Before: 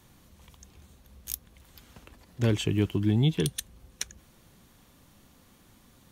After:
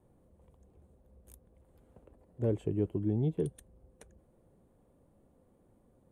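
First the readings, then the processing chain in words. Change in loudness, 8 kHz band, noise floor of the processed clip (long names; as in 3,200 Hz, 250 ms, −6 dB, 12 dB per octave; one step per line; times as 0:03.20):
−4.5 dB, below −20 dB, −67 dBFS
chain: drawn EQ curve 250 Hz 0 dB, 510 Hz +8 dB, 1,200 Hz −9 dB, 5,600 Hz −27 dB, 9,100 Hz −10 dB, 14,000 Hz −22 dB
level −7.5 dB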